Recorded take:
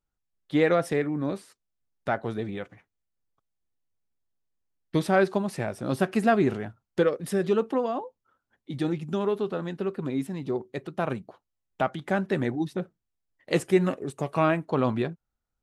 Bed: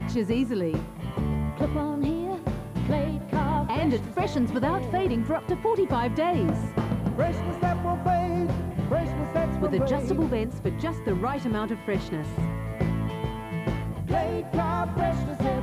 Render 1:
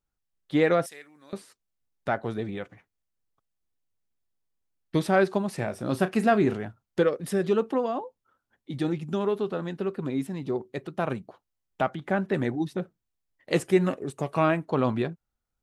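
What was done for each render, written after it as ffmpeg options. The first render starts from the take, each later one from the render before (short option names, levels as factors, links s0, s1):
-filter_complex "[0:a]asettb=1/sr,asplit=3[s0][s1][s2];[s0]atrim=end=0.864[s3];[s1]atrim=start=0.86:end=1.33,asetpts=PTS-STARTPTS,afade=t=in:d=0.004:c=qsin,afade=t=out:st=0.466:d=0.004:c=qsin,aderivative[s4];[s2]atrim=start=1.326[s5];[s3][s4]acrossfade=d=0.004:c1=hsin:c2=qsin[s6];[s6][s5]acrossfade=d=0.004:c1=qsin:c2=hsin,asettb=1/sr,asplit=3[s7][s8][s9];[s7]atrim=end=5.554[s10];[s8]atrim=start=5.55:end=6.53,asetpts=PTS-STARTPTS,afade=t=in:d=0.004:c=qsin,afade=t=out:st=0.976:d=0.004:c=qsin,asplit=2[s11][s12];[s12]adelay=33,volume=0.211[s13];[s11][s13]amix=inputs=2:normalize=0,atrim=end_sample=43218[s14];[s9]atrim=start=6.526[s15];[s10][s14]acrossfade=d=0.004:c1=hsin:c2=qsin[s16];[s16][s15]acrossfade=d=0.004:c1=qsin:c2=hsin,asettb=1/sr,asplit=3[s17][s18][s19];[s17]atrim=end=11.904[s20];[s18]atrim=start=11.9:end=12.34,asetpts=PTS-STARTPTS,afade=t=in:d=0.004:c=qsin,afade=t=out:st=0.436:d=0.004:c=qsin,acrossover=split=3100[s21][s22];[s22]acompressor=threshold=0.00158:ratio=4:attack=1:release=60[s23];[s21][s23]amix=inputs=2:normalize=0[s24];[s19]atrim=start=12.336[s25];[s20][s24]acrossfade=d=0.004:c1=hsin:c2=qsin[s26];[s26][s25]acrossfade=d=0.004:c1=qsin:c2=hsin"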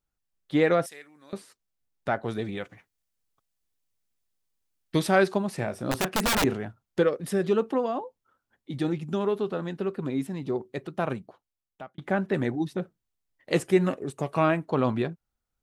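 -filter_complex "[0:a]asettb=1/sr,asplit=3[s0][s1][s2];[s0]atrim=end=2.284[s3];[s1]atrim=start=2.28:end=5.34,asetpts=PTS-STARTPTS,afade=t=in:d=0.004:c=qsin,afade=t=out:st=3.056:d=0.004:c=qsin,highshelf=f=2300:g=6.5[s4];[s2]atrim=start=5.336[s5];[s3][s4]acrossfade=d=0.004:c1=hsin:c2=qsin[s6];[s6][s5]acrossfade=d=0.004:c1=qsin:c2=hsin,asettb=1/sr,asplit=3[s7][s8][s9];[s7]atrim=end=5.914[s10];[s8]atrim=start=5.91:end=6.44,asetpts=PTS-STARTPTS,afade=t=in:d=0.004:c=qsin,afade=t=out:st=0.526:d=0.004:c=qsin,aeval=exprs='(mod(8.91*val(0)+1,2)-1)/8.91':c=same[s11];[s9]atrim=start=6.436[s12];[s10][s11]acrossfade=d=0.004:c1=hsin:c2=qsin[s13];[s13][s12]acrossfade=d=0.004:c1=qsin:c2=hsin,asplit=2[s14][s15];[s14]atrim=end=11.98,asetpts=PTS-STARTPTS,afade=t=out:st=11.06:d=0.92[s16];[s15]atrim=start=11.98,asetpts=PTS-STARTPTS,afade=t=in:d=0.004:c=hsin[s17];[s16][s17]concat=n=2:v=0:a=1"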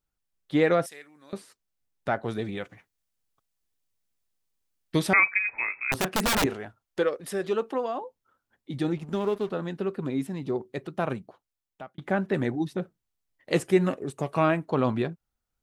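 -filter_complex "[0:a]asettb=1/sr,asplit=3[s0][s1][s2];[s0]atrim=end=5.134[s3];[s1]atrim=start=5.13:end=5.92,asetpts=PTS-STARTPTS,afade=t=in:d=0.004:c=qsin,afade=t=out:st=0.786:d=0.004:c=qsin,lowpass=f=2300:t=q:w=0.5098,lowpass=f=2300:t=q:w=0.6013,lowpass=f=2300:t=q:w=0.9,lowpass=f=2300:t=q:w=2.563,afreqshift=-2700[s4];[s2]atrim=start=5.916[s5];[s3][s4]acrossfade=d=0.004:c1=hsin:c2=qsin[s6];[s6][s5]acrossfade=d=0.004:c1=qsin:c2=hsin,asettb=1/sr,asplit=3[s7][s8][s9];[s7]atrim=end=6.464[s10];[s8]atrim=start=6.46:end=8.01,asetpts=PTS-STARTPTS,afade=t=in:d=0.004:c=qsin,afade=t=out:st=1.546:d=0.004:c=qsin,equalizer=f=150:w=0.71:g=-10.5[s11];[s9]atrim=start=8.006[s12];[s10][s11]acrossfade=d=0.004:c1=hsin:c2=qsin[s13];[s13][s12]acrossfade=d=0.004:c1=qsin:c2=hsin,asettb=1/sr,asplit=3[s14][s15][s16];[s14]atrim=end=8.974[s17];[s15]atrim=start=8.97:end=9.5,asetpts=PTS-STARTPTS,afade=t=in:d=0.004:c=qsin,afade=t=out:st=0.526:d=0.004:c=qsin,aeval=exprs='sgn(val(0))*max(abs(val(0))-0.00562,0)':c=same[s18];[s16]atrim=start=9.496[s19];[s17][s18]acrossfade=d=0.004:c1=hsin:c2=qsin[s20];[s20][s19]acrossfade=d=0.004:c1=qsin:c2=hsin"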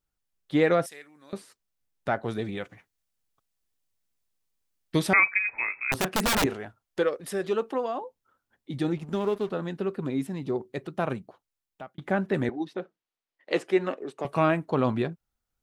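-filter_complex "[0:a]asettb=1/sr,asplit=3[s0][s1][s2];[s0]atrim=end=12.494[s3];[s1]atrim=start=12.49:end=14.25,asetpts=PTS-STARTPTS,afade=t=in:d=0.004:c=qsin,afade=t=out:st=1.756:d=0.004:c=qsin,acrossover=split=260 5200:gain=0.0794 1 0.178[s4][s5][s6];[s4][s5][s6]amix=inputs=3:normalize=0[s7];[s2]atrim=start=14.246[s8];[s3][s7]acrossfade=d=0.004:c1=hsin:c2=qsin[s9];[s9][s8]acrossfade=d=0.004:c1=qsin:c2=hsin"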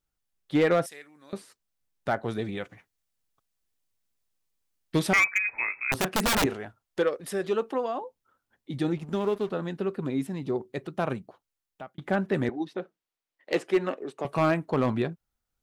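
-af "asoftclip=type=hard:threshold=0.158"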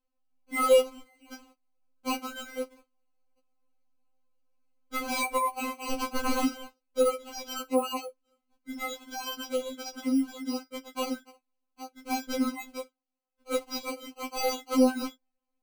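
-af "acrusher=samples=25:mix=1:aa=0.000001,afftfilt=real='re*3.46*eq(mod(b,12),0)':imag='im*3.46*eq(mod(b,12),0)':win_size=2048:overlap=0.75"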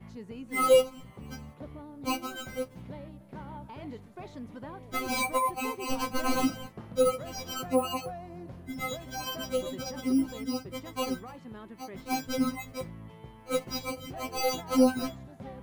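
-filter_complex "[1:a]volume=0.133[s0];[0:a][s0]amix=inputs=2:normalize=0"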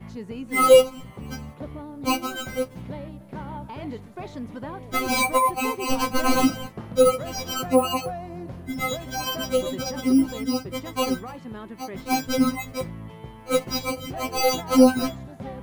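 -af "volume=2.37"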